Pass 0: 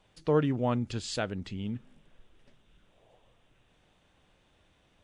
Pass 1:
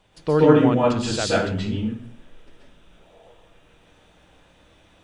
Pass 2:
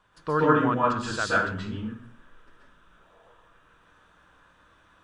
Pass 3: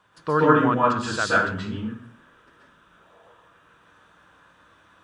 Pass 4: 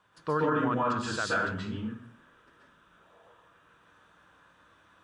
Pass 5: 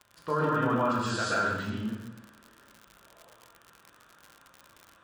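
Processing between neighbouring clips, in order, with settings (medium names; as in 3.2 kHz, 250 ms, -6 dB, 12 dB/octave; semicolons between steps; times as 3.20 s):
plate-style reverb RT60 0.54 s, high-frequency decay 0.75×, pre-delay 115 ms, DRR -6 dB; trim +5 dB
high-order bell 1.3 kHz +12.5 dB 1 oct; trim -8 dB
high-pass 83 Hz 12 dB/octave; trim +3.5 dB
peak limiter -13.5 dBFS, peak gain reduction 11 dB; trim -5 dB
two-slope reverb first 0.8 s, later 2.8 s, from -24 dB, DRR -0.5 dB; crackle 79 per s -35 dBFS; trim -2 dB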